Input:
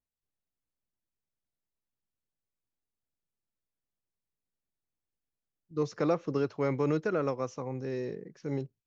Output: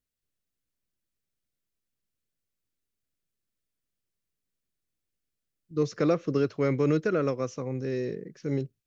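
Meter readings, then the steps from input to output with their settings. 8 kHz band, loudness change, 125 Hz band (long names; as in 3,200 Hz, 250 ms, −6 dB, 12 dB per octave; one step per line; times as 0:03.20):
can't be measured, +4.0 dB, +5.0 dB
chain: parametric band 870 Hz −11 dB 0.66 octaves
level +5 dB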